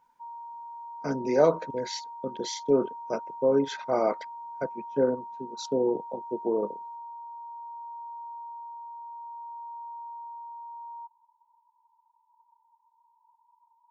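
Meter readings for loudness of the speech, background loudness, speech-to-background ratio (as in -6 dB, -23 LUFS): -28.5 LUFS, -41.5 LUFS, 13.0 dB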